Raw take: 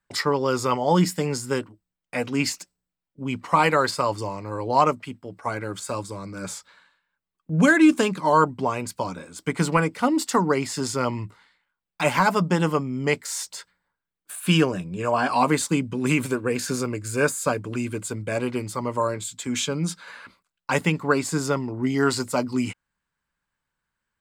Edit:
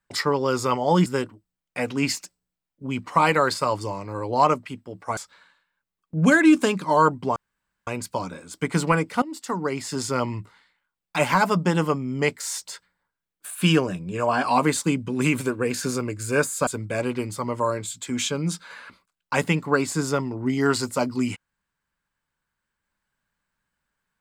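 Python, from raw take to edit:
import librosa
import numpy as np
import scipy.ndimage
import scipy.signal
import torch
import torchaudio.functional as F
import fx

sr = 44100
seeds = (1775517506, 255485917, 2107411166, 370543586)

y = fx.edit(x, sr, fx.cut(start_s=1.06, length_s=0.37),
    fx.cut(start_s=5.54, length_s=0.99),
    fx.insert_room_tone(at_s=8.72, length_s=0.51),
    fx.fade_in_from(start_s=10.07, length_s=0.87, floor_db=-17.0),
    fx.cut(start_s=17.52, length_s=0.52), tone=tone)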